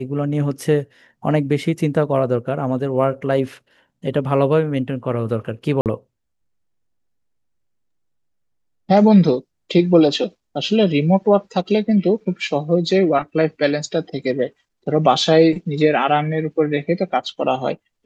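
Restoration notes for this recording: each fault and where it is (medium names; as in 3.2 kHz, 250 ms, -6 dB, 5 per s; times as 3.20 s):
5.81–5.86 s: dropout 48 ms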